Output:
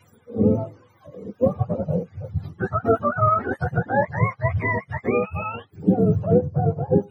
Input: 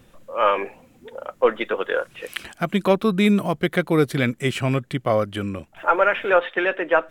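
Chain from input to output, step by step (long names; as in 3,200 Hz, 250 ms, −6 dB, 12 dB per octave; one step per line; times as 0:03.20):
frequency axis turned over on the octave scale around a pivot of 510 Hz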